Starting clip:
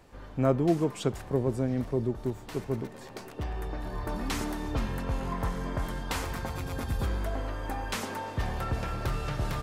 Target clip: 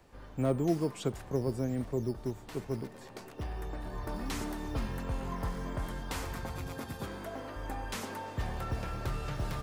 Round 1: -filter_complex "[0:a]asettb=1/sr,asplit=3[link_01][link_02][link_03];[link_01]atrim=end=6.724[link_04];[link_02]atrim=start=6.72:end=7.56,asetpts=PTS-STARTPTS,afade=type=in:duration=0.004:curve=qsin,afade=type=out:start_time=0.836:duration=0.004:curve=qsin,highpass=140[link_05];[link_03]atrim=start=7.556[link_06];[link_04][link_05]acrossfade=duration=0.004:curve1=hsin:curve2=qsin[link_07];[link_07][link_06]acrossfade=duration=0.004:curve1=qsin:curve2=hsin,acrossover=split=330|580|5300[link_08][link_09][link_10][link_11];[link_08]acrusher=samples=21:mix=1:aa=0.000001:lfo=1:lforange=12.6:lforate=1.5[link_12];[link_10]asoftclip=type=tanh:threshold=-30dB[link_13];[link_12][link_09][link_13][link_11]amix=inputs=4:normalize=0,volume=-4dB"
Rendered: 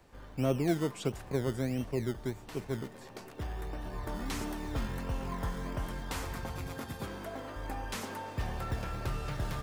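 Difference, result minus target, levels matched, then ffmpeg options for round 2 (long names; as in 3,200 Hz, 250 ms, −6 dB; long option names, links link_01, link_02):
sample-and-hold swept by an LFO: distortion +10 dB
-filter_complex "[0:a]asettb=1/sr,asplit=3[link_01][link_02][link_03];[link_01]atrim=end=6.724[link_04];[link_02]atrim=start=6.72:end=7.56,asetpts=PTS-STARTPTS,afade=type=in:duration=0.004:curve=qsin,afade=type=out:start_time=0.836:duration=0.004:curve=qsin,highpass=140[link_05];[link_03]atrim=start=7.556[link_06];[link_04][link_05]acrossfade=duration=0.004:curve1=hsin:curve2=qsin[link_07];[link_07][link_06]acrossfade=duration=0.004:curve1=qsin:curve2=hsin,acrossover=split=330|580|5300[link_08][link_09][link_10][link_11];[link_08]acrusher=samples=7:mix=1:aa=0.000001:lfo=1:lforange=4.2:lforate=1.5[link_12];[link_10]asoftclip=type=tanh:threshold=-30dB[link_13];[link_12][link_09][link_13][link_11]amix=inputs=4:normalize=0,volume=-4dB"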